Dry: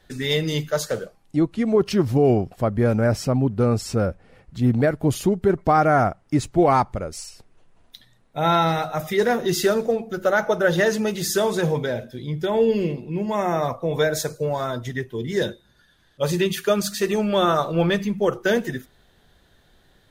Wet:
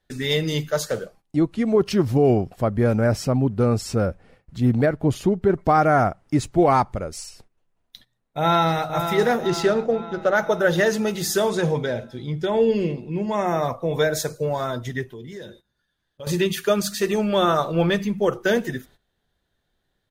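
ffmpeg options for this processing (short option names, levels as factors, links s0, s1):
-filter_complex "[0:a]asettb=1/sr,asplit=3[s0][s1][s2];[s0]atrim=end=4.864[s3];[s1]atrim=start=4.86:end=5.54,asetpts=PTS-STARTPTS,afade=t=in:d=0.004:c=qsin,afade=t=out:st=0.676:d=0.004:c=qsin,lowpass=f=3600:p=1[s4];[s2]atrim=start=5.536[s5];[s3][s4]acrossfade=d=0.004:c1=hsin:c2=qsin[s6];[s6][s5]acrossfade=d=0.004:c1=qsin:c2=hsin,asplit=2[s7][s8];[s8]afade=t=in:st=8.39:d=0.01,afade=t=out:st=8.86:d=0.01,aecho=0:1:500|1000|1500|2000|2500|3000|3500:0.398107|0.218959|0.120427|0.0662351|0.0364293|0.0200361|0.0110199[s9];[s7][s9]amix=inputs=2:normalize=0,asettb=1/sr,asplit=3[s10][s11][s12];[s10]atrim=end=9.474[s13];[s11]atrim=start=9.47:end=10.35,asetpts=PTS-STARTPTS,afade=t=in:d=0.004:c=qsin,afade=t=out:st=0.876:d=0.004:c=qsin,adynamicsmooth=sensitivity=1.5:basefreq=4300[s14];[s12]atrim=start=10.346[s15];[s13][s14]acrossfade=d=0.004:c1=hsin:c2=qsin[s16];[s16][s15]acrossfade=d=0.004:c1=qsin:c2=hsin,asettb=1/sr,asplit=3[s17][s18][s19];[s17]atrim=end=11.494[s20];[s18]atrim=start=11.49:end=13.47,asetpts=PTS-STARTPTS,afade=t=in:d=0.004:c=qsin,afade=t=out:st=1.976:d=0.004:c=qsin,lowpass=9500[s21];[s19]atrim=start=13.466[s22];[s20][s21]acrossfade=d=0.004:c1=hsin:c2=qsin[s23];[s23][s22]acrossfade=d=0.004:c1=qsin:c2=hsin,asettb=1/sr,asplit=3[s24][s25][s26];[s24]atrim=end=15.134[s27];[s25]atrim=start=15.13:end=16.27,asetpts=PTS-STARTPTS,afade=t=in:d=0.004:c=qsin,afade=t=out:st=1.136:d=0.004:c=qsin,acompressor=threshold=0.0158:ratio=4:attack=3.2:release=140:knee=1:detection=peak[s28];[s26]atrim=start=16.266[s29];[s27][s28]acrossfade=d=0.004:c1=hsin:c2=qsin[s30];[s30][s29]acrossfade=d=0.004:c1=qsin:c2=hsin,agate=range=0.158:threshold=0.00398:ratio=16:detection=peak"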